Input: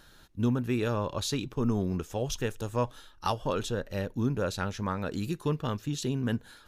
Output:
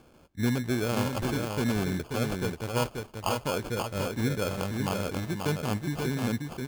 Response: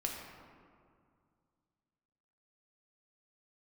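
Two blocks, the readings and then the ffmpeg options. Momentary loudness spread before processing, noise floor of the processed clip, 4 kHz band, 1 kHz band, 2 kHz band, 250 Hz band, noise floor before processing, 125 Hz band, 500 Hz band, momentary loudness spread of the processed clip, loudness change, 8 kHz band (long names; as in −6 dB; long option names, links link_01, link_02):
4 LU, −56 dBFS, +1.5 dB, +1.0 dB, +5.0 dB, +1.0 dB, −56 dBFS, +1.0 dB, +1.0 dB, 3 LU, +1.5 dB, +1.5 dB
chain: -af "highpass=53,acrusher=samples=23:mix=1:aa=0.000001,aecho=1:1:535:0.596"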